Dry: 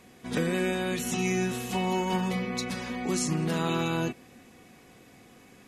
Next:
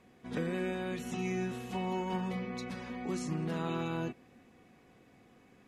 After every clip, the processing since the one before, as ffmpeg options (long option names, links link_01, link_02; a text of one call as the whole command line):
ffmpeg -i in.wav -af "highshelf=frequency=4000:gain=-12,volume=-6.5dB" out.wav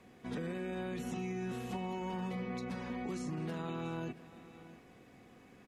ffmpeg -i in.wav -filter_complex "[0:a]alimiter=level_in=6.5dB:limit=-24dB:level=0:latency=1:release=26,volume=-6.5dB,aecho=1:1:677:0.0944,acrossover=split=180|1400[link_01][link_02][link_03];[link_01]acompressor=threshold=-47dB:ratio=4[link_04];[link_02]acompressor=threshold=-41dB:ratio=4[link_05];[link_03]acompressor=threshold=-54dB:ratio=4[link_06];[link_04][link_05][link_06]amix=inputs=3:normalize=0,volume=2.5dB" out.wav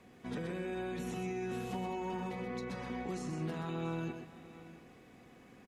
ffmpeg -i in.wav -af "aecho=1:1:127:0.473" out.wav